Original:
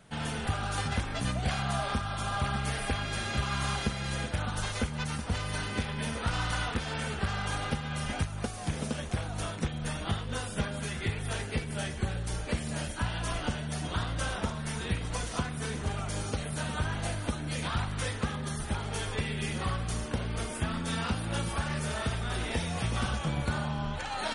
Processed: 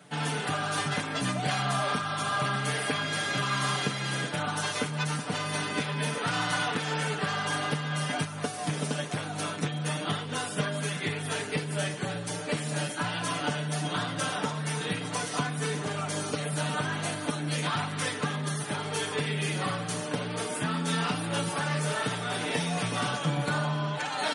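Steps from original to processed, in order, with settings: high-pass 150 Hz 24 dB/octave; comb 6.8 ms, depth 68%; in parallel at -6.5 dB: saturation -27 dBFS, distortion -16 dB

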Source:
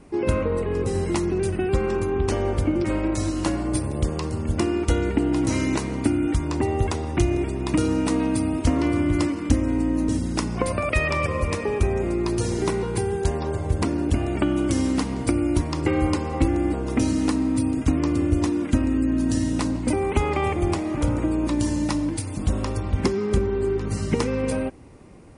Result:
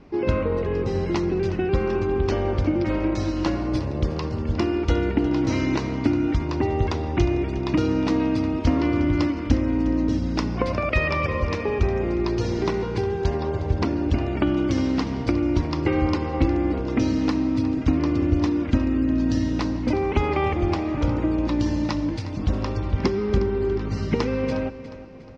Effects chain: steep low-pass 5.5 kHz 36 dB/octave; on a send: feedback delay 359 ms, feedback 42%, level -14.5 dB

